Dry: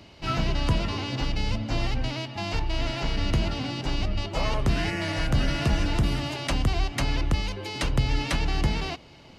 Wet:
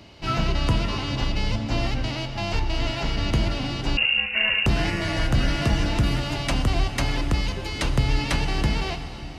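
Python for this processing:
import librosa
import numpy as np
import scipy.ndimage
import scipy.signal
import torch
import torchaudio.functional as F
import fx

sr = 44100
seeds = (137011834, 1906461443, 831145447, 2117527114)

y = fx.rev_plate(x, sr, seeds[0], rt60_s=4.2, hf_ratio=0.85, predelay_ms=0, drr_db=7.5)
y = fx.freq_invert(y, sr, carrier_hz=2800, at=(3.97, 4.66))
y = F.gain(torch.from_numpy(y), 2.0).numpy()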